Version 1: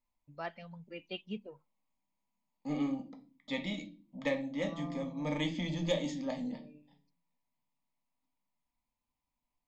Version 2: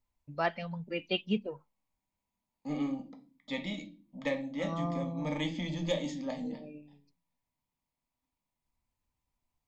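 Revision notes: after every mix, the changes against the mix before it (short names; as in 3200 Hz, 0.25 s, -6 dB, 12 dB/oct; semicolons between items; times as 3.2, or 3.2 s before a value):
first voice +10.0 dB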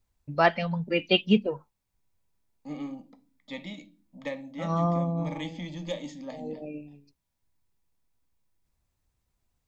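first voice +9.5 dB; second voice: send -7.0 dB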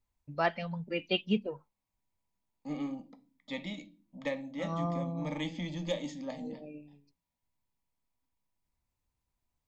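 first voice -8.0 dB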